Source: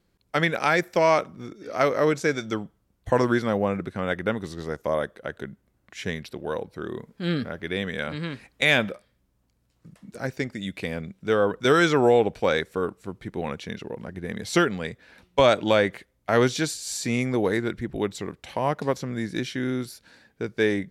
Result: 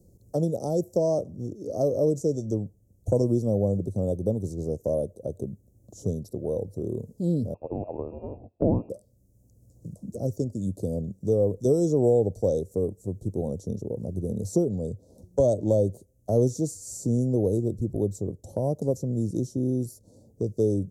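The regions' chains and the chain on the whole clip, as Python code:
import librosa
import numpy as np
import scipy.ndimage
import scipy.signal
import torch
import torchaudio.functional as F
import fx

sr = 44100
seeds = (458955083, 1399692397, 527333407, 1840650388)

y = fx.chain(x, sr, fx.peak_eq(hz=78.0, db=12.5, octaves=1.6),
    fx.leveller(passes=1),
    fx.freq_invert(carrier_hz=2600), at=(7.54, 8.9))
y = scipy.signal.sosfilt(scipy.signal.ellip(3, 1.0, 80, [580.0, 6500.0], 'bandstop', fs=sr, output='sos'), y)
y = fx.peak_eq(y, sr, hz=98.0, db=11.0, octaves=0.6)
y = fx.band_squash(y, sr, depth_pct=40)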